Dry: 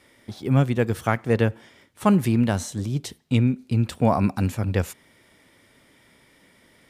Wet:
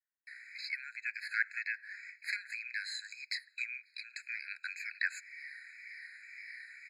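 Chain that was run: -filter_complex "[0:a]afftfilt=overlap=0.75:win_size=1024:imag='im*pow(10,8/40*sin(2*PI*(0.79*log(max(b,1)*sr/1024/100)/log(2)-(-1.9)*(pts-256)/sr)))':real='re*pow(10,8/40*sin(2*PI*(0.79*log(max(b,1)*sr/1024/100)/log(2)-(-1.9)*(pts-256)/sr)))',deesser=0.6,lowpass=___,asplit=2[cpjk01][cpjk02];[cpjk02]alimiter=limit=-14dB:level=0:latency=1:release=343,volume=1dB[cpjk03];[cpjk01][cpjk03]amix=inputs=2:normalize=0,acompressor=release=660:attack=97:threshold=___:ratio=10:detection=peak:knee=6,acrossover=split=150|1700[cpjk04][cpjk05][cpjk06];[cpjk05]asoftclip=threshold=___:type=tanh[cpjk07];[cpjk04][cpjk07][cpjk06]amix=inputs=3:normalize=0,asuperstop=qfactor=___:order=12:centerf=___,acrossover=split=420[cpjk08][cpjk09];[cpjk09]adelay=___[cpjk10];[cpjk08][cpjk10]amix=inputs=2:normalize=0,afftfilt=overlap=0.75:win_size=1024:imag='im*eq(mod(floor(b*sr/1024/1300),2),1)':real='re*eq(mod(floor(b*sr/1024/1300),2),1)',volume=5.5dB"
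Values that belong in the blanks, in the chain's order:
3400, -23dB, -18.5dB, 1.1, 1000, 270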